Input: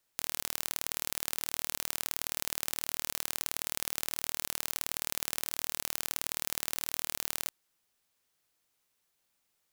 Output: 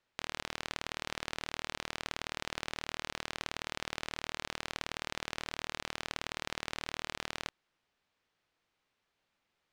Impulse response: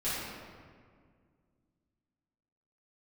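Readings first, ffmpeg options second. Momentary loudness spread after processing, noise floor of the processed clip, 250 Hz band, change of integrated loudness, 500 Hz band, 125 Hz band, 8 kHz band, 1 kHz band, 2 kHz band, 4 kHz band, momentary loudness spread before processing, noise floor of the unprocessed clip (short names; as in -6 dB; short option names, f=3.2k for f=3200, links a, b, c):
0 LU, -83 dBFS, +3.0 dB, -6.0 dB, +3.0 dB, +3.0 dB, -12.5 dB, +3.0 dB, +2.5 dB, -1.5 dB, 0 LU, -78 dBFS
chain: -af "lowpass=3.3k,volume=3dB"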